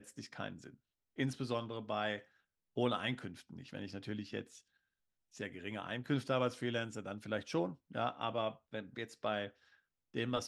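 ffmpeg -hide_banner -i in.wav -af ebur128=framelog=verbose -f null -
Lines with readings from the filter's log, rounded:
Integrated loudness:
  I:         -40.0 LUFS
  Threshold: -50.5 LUFS
Loudness range:
  LRA:         4.1 LU
  Threshold: -60.4 LUFS
  LRA low:   -42.7 LUFS
  LRA high:  -38.6 LUFS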